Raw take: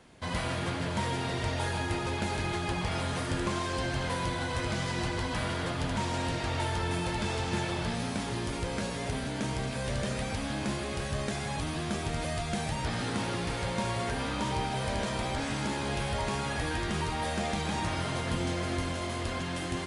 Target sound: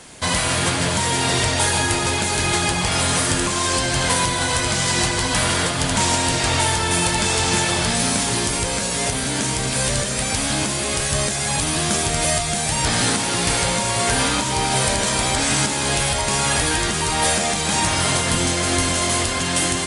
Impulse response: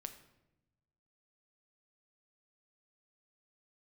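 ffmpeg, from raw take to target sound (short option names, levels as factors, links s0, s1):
-filter_complex "[0:a]equalizer=f=8700:w=0.68:g=13.5,alimiter=limit=0.1:level=0:latency=1:release=402,asplit=2[s0][s1];[1:a]atrim=start_sample=2205,asetrate=42336,aresample=44100,lowshelf=f=400:g=-7.5[s2];[s1][s2]afir=irnorm=-1:irlink=0,volume=2.37[s3];[s0][s3]amix=inputs=2:normalize=0,volume=2"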